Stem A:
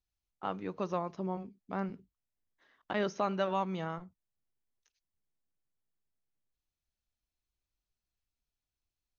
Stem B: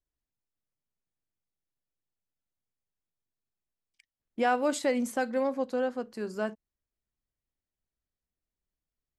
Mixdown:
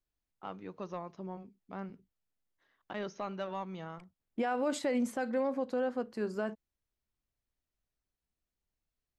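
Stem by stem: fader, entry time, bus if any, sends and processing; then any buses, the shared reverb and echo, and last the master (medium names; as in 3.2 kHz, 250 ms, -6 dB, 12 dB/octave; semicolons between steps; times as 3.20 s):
-6.0 dB, 0.00 s, no send, saturation -20 dBFS, distortion -24 dB
+0.5 dB, 0.00 s, no send, treble shelf 4.9 kHz -9.5 dB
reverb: none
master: peak limiter -23.5 dBFS, peak gain reduction 9 dB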